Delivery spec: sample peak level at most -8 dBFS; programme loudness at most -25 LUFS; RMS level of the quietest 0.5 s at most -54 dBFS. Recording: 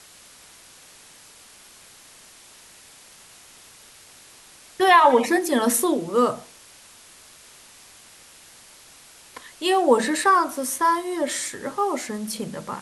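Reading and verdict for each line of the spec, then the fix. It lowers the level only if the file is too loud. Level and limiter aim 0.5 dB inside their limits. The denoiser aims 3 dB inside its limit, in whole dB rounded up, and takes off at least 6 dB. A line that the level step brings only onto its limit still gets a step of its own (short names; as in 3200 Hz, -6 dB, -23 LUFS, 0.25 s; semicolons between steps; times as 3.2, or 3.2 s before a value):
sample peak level -4.0 dBFS: fail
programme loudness -21.0 LUFS: fail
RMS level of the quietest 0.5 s -49 dBFS: fail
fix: denoiser 6 dB, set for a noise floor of -49 dBFS; gain -4.5 dB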